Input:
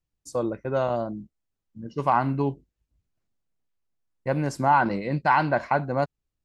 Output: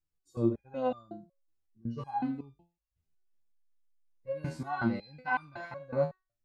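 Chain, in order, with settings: dynamic bell 3.8 kHz, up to +5 dB, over -53 dBFS, Q 4.9; harmonic-percussive split percussive -18 dB; resonator arpeggio 5.4 Hz 79–1200 Hz; trim +8 dB

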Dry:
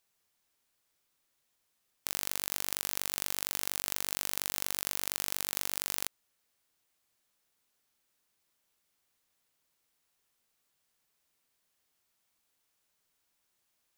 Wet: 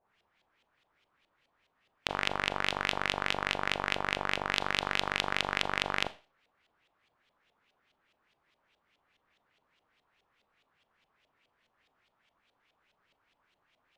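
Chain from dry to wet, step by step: LFO low-pass saw up 4.8 Hz 630–3500 Hz; Schroeder reverb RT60 0.34 s, combs from 27 ms, DRR 14.5 dB; trim +8.5 dB

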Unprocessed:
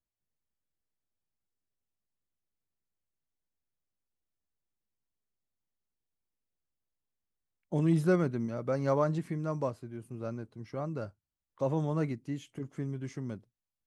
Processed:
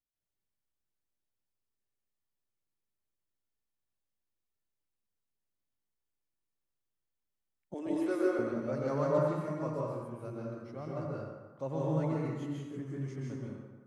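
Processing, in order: 7.74–8.39 s: elliptic high-pass 280 Hz; band-passed feedback delay 90 ms, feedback 59%, band-pass 1.2 kHz, level -8 dB; reverberation RT60 1.2 s, pre-delay 123 ms, DRR -4 dB; trim -7.5 dB

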